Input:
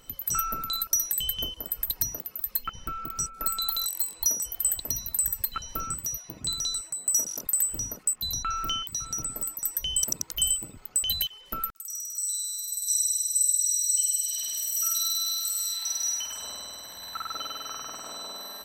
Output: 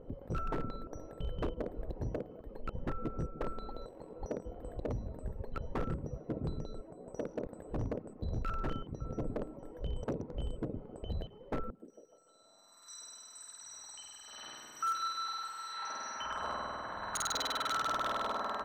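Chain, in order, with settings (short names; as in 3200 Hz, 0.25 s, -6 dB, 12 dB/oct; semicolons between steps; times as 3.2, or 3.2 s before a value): low-pass sweep 510 Hz -> 1300 Hz, 12.31–12.93; on a send: delay with a stepping band-pass 0.15 s, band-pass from 190 Hz, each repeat 0.7 oct, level -12 dB; on the sum: wavefolder -33 dBFS; gain +5 dB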